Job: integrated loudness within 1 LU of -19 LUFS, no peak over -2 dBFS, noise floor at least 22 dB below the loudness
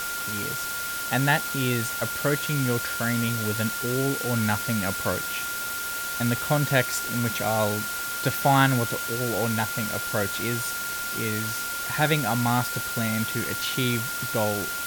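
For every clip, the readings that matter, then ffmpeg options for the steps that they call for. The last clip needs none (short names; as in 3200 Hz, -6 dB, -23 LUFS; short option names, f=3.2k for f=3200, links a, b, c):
steady tone 1400 Hz; tone level -31 dBFS; noise floor -31 dBFS; noise floor target -48 dBFS; loudness -25.5 LUFS; peak -7.0 dBFS; loudness target -19.0 LUFS
-> -af "bandreject=f=1.4k:w=30"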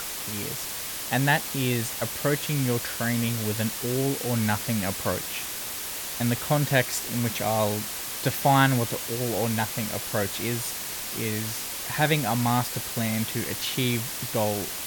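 steady tone none; noise floor -34 dBFS; noise floor target -48 dBFS
-> -af "afftdn=nr=14:nf=-34"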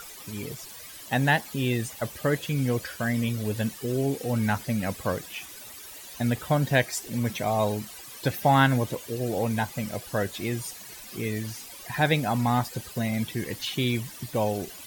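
noise floor -44 dBFS; noise floor target -50 dBFS
-> -af "afftdn=nr=6:nf=-44"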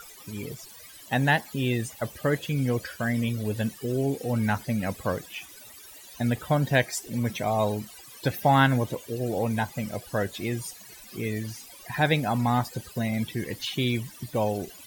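noise floor -48 dBFS; noise floor target -50 dBFS
-> -af "afftdn=nr=6:nf=-48"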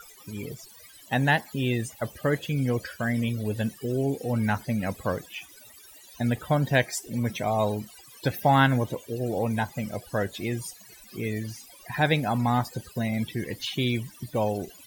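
noise floor -51 dBFS; loudness -27.5 LUFS; peak -8.0 dBFS; loudness target -19.0 LUFS
-> -af "volume=8.5dB,alimiter=limit=-2dB:level=0:latency=1"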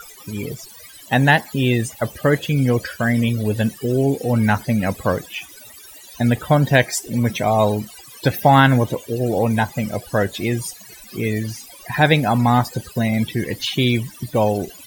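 loudness -19.5 LUFS; peak -2.0 dBFS; noise floor -42 dBFS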